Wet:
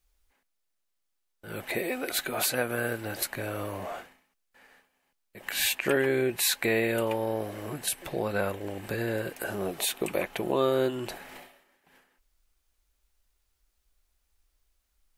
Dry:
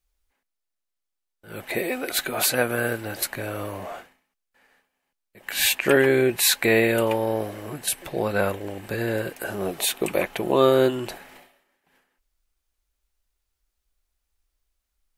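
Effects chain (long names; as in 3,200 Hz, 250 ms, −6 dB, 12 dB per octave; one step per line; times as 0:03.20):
downward compressor 1.5 to 1, threshold −45 dBFS, peak gain reduction 11.5 dB
level +3.5 dB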